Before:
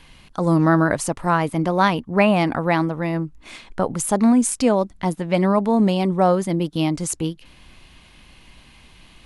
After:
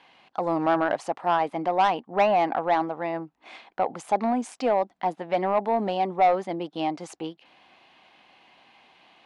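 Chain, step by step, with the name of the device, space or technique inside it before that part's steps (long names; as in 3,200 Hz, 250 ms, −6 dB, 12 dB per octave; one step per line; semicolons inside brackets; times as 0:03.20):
intercom (band-pass filter 340–3,700 Hz; parametric band 760 Hz +11 dB 0.46 octaves; soft clipping −8 dBFS, distortion −14 dB)
level −5 dB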